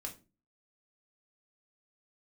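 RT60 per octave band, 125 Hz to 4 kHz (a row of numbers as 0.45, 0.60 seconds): 0.50, 0.50, 0.35, 0.25, 0.25, 0.25 seconds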